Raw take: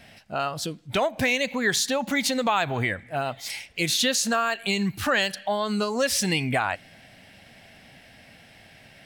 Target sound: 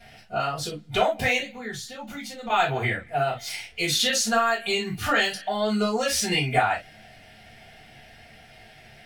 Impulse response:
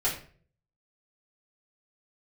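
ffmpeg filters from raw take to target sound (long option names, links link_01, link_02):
-filter_complex "[0:a]asettb=1/sr,asplit=3[link_01][link_02][link_03];[link_01]atrim=end=1.394[link_04];[link_02]atrim=start=1.39:end=2.5,asetpts=PTS-STARTPTS,afade=type=in:duration=0.004:curve=qsin,afade=type=out:start_time=1.106:duration=0.004:curve=qsin,acrossover=split=170[link_05][link_06];[link_06]acompressor=threshold=-39dB:ratio=3[link_07];[link_05][link_07]amix=inputs=2:normalize=0[link_08];[link_03]atrim=start=2.496[link_09];[link_04][link_08]acrossfade=duration=0.004:curve1=hsin:curve2=qsin[link_10];[link_10][link_09]acrossfade=duration=0.004:curve1=qsin:curve2=hsin[link_11];[1:a]atrim=start_sample=2205,atrim=end_sample=3087[link_12];[link_11][link_12]afir=irnorm=-1:irlink=0,volume=-7dB"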